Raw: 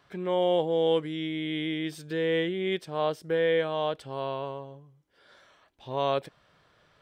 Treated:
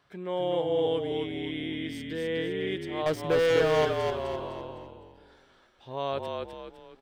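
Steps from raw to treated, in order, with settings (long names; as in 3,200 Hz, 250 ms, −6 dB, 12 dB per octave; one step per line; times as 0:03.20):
0:03.06–0:03.85: leveller curve on the samples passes 3
echo with shifted repeats 254 ms, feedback 40%, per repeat −39 Hz, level −3.5 dB
level −4.5 dB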